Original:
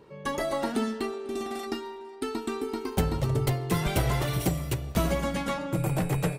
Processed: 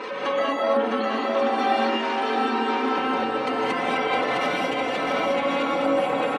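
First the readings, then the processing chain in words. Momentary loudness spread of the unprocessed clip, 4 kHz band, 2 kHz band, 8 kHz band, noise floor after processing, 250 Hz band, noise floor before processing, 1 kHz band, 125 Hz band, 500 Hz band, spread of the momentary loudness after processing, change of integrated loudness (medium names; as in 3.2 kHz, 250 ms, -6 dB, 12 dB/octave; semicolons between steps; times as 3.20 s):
7 LU, +7.5 dB, +10.5 dB, no reading, -27 dBFS, +3.0 dB, -43 dBFS, +12.0 dB, -17.0 dB, +8.0 dB, 2 LU, +6.0 dB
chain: jump at every zero crossing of -29 dBFS; comb 3.9 ms, depth 69%; compression, threshold -25 dBFS, peak gain reduction 8 dB; spectral gate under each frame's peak -25 dB strong; band-pass 480–3000 Hz; on a send: bouncing-ball echo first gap 660 ms, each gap 0.65×, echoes 5; on the sum: gated-style reverb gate 250 ms rising, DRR -4 dB; trim +4 dB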